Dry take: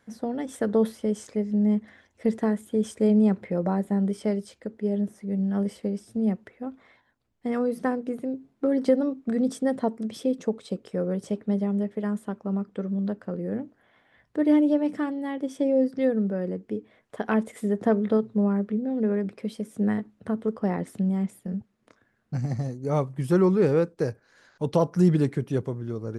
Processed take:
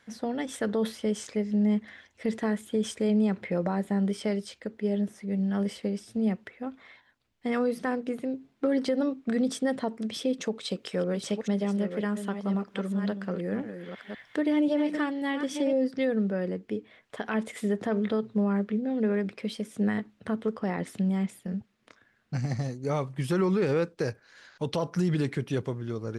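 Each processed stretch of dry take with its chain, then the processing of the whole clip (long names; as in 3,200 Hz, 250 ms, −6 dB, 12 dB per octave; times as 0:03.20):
0:10.41–0:15.73: delay that plays each chunk backwards 534 ms, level −9 dB + parametric band 68 Hz −5.5 dB 1 octave + one half of a high-frequency compander encoder only
whole clip: parametric band 3,100 Hz +10 dB 2.5 octaves; brickwall limiter −16 dBFS; level −2 dB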